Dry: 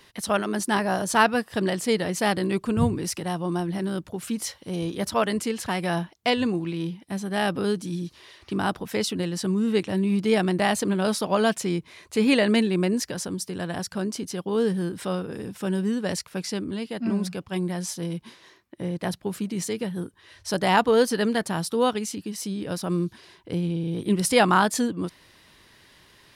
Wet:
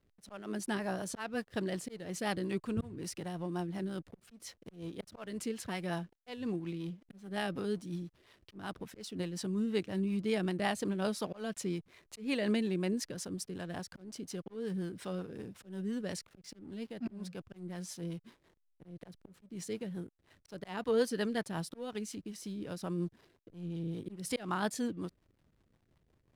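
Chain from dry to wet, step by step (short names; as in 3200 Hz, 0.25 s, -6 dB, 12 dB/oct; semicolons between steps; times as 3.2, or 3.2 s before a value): auto swell 0.269 s; backlash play -42.5 dBFS; rotary speaker horn 5.5 Hz; gain -8.5 dB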